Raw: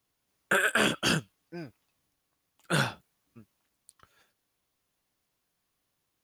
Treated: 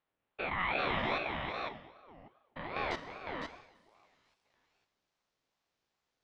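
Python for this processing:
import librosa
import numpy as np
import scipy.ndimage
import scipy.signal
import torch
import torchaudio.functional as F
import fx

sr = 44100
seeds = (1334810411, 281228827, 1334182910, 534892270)

y = fx.spec_steps(x, sr, hold_ms=200)
y = fx.lowpass(y, sr, hz=fx.steps((0.0, 2800.0), (2.91, 6100.0)), slope=24)
y = y + 10.0 ** (-5.0 / 20.0) * np.pad(y, (int(507 * sr / 1000.0), 0))[:len(y)]
y = fx.rev_schroeder(y, sr, rt60_s=1.1, comb_ms=29, drr_db=10.0)
y = fx.ring_lfo(y, sr, carrier_hz=670.0, swing_pct=45, hz=2.5)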